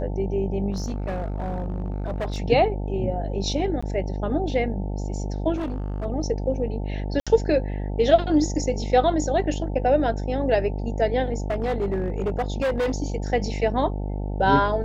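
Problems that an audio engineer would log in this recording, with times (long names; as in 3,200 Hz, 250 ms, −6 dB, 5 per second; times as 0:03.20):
mains buzz 50 Hz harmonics 18 −28 dBFS
0:00.71–0:02.40: clipping −23.5 dBFS
0:03.81–0:03.83: drop-out 15 ms
0:05.55–0:06.06: clipping −24.5 dBFS
0:07.20–0:07.27: drop-out 66 ms
0:11.34–0:12.94: clipping −20 dBFS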